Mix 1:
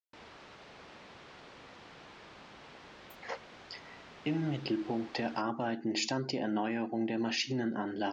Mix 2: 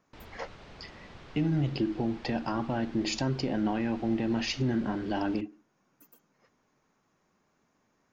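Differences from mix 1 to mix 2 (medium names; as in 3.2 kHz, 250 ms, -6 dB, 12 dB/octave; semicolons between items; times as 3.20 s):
speech: entry -2.90 s; master: remove high-pass 350 Hz 6 dB/octave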